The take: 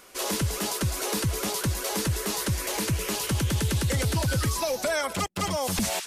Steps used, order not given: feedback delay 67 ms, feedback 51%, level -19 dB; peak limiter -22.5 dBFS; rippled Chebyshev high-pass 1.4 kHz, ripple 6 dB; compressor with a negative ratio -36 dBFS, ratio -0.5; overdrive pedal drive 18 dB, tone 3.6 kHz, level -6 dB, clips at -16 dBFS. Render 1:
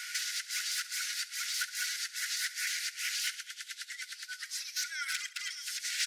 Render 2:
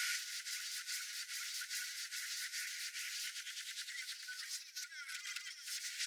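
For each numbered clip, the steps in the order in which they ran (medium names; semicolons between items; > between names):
peak limiter > compressor with a negative ratio > feedback delay > overdrive pedal > rippled Chebyshev high-pass; overdrive pedal > peak limiter > feedback delay > compressor with a negative ratio > rippled Chebyshev high-pass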